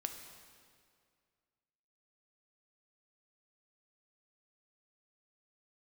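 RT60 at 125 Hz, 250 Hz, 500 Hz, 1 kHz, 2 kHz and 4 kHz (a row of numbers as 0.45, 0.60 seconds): 2.3, 2.2, 2.2, 2.1, 1.9, 1.8 seconds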